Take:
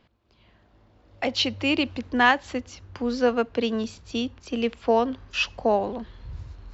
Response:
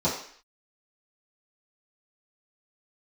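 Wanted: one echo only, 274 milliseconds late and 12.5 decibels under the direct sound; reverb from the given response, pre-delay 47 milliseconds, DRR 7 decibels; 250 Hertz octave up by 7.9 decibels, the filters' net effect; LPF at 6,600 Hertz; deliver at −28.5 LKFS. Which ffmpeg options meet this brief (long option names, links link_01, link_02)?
-filter_complex "[0:a]lowpass=6600,equalizer=frequency=250:width_type=o:gain=8.5,aecho=1:1:274:0.237,asplit=2[link_01][link_02];[1:a]atrim=start_sample=2205,adelay=47[link_03];[link_02][link_03]afir=irnorm=-1:irlink=0,volume=-19.5dB[link_04];[link_01][link_04]amix=inputs=2:normalize=0,volume=-8.5dB"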